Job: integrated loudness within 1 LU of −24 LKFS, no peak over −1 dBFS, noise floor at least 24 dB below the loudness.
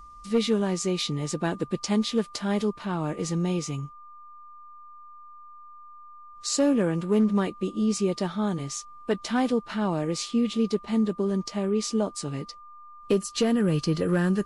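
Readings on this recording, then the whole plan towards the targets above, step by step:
share of clipped samples 0.3%; peaks flattened at −15.5 dBFS; interfering tone 1,200 Hz; level of the tone −45 dBFS; integrated loudness −27.0 LKFS; sample peak −15.5 dBFS; target loudness −24.0 LKFS
→ clipped peaks rebuilt −15.5 dBFS
notch filter 1,200 Hz, Q 30
level +3 dB

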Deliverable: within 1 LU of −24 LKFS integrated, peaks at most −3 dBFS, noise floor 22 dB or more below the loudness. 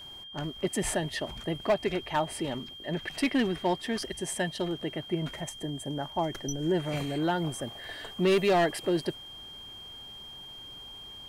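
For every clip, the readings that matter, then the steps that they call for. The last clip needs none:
share of clipped samples 0.6%; peaks flattened at −19.0 dBFS; interfering tone 3,200 Hz; level of the tone −43 dBFS; integrated loudness −30.5 LKFS; sample peak −19.0 dBFS; target loudness −24.0 LKFS
→ clipped peaks rebuilt −19 dBFS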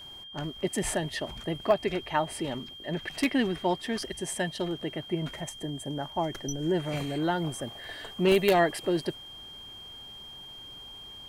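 share of clipped samples 0.0%; interfering tone 3,200 Hz; level of the tone −43 dBFS
→ notch filter 3,200 Hz, Q 30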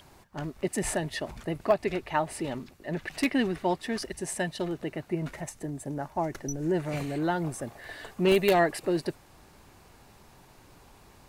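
interfering tone none found; integrated loudness −30.0 LKFS; sample peak −9.5 dBFS; target loudness −24.0 LKFS
→ level +6 dB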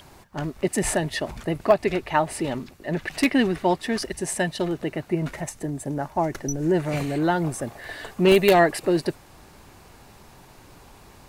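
integrated loudness −24.0 LKFS; sample peak −3.5 dBFS; background noise floor −50 dBFS

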